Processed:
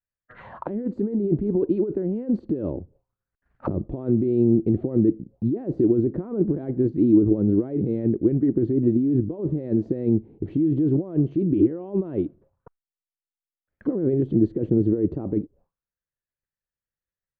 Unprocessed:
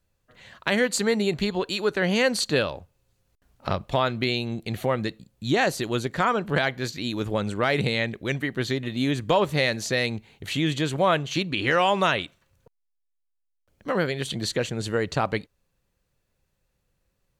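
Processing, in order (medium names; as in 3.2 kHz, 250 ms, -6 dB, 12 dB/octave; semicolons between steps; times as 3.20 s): expander -52 dBFS; compressor with a negative ratio -29 dBFS, ratio -1; touch-sensitive low-pass 330–1800 Hz down, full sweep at -32.5 dBFS; trim +3 dB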